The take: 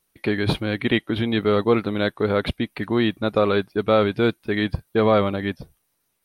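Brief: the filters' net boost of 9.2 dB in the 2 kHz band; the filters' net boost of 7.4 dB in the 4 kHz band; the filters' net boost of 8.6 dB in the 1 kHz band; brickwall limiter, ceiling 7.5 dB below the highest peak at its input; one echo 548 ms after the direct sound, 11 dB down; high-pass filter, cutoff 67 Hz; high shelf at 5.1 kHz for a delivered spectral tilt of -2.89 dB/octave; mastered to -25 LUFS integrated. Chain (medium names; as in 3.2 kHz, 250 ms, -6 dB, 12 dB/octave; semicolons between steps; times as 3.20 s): high-pass 67 Hz; peaking EQ 1 kHz +8.5 dB; peaking EQ 2 kHz +7 dB; peaking EQ 4 kHz +4.5 dB; treble shelf 5.1 kHz +4 dB; peak limiter -6.5 dBFS; delay 548 ms -11 dB; trim -4.5 dB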